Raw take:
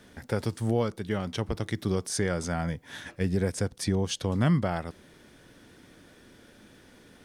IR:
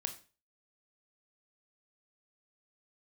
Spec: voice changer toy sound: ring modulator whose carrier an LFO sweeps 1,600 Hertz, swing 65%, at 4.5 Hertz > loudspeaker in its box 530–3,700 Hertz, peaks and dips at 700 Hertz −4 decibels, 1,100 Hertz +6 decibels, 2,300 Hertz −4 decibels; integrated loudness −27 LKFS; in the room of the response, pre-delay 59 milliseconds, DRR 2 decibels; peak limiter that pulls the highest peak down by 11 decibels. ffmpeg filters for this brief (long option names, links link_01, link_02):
-filter_complex "[0:a]alimiter=limit=-23.5dB:level=0:latency=1,asplit=2[link_01][link_02];[1:a]atrim=start_sample=2205,adelay=59[link_03];[link_02][link_03]afir=irnorm=-1:irlink=0,volume=-1.5dB[link_04];[link_01][link_04]amix=inputs=2:normalize=0,aeval=exprs='val(0)*sin(2*PI*1600*n/s+1600*0.65/4.5*sin(2*PI*4.5*n/s))':channel_layout=same,highpass=530,equalizer=frequency=700:width_type=q:width=4:gain=-4,equalizer=frequency=1100:width_type=q:width=4:gain=6,equalizer=frequency=2300:width_type=q:width=4:gain=-4,lowpass=frequency=3700:width=0.5412,lowpass=frequency=3700:width=1.3066,volume=8dB"